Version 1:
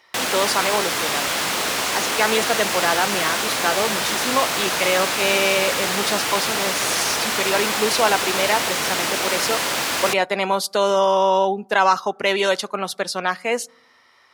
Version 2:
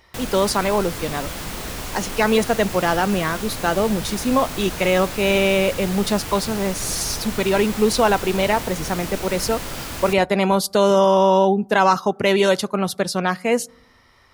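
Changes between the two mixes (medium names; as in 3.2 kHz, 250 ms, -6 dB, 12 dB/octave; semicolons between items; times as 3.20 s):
background -10.5 dB; master: remove frequency weighting A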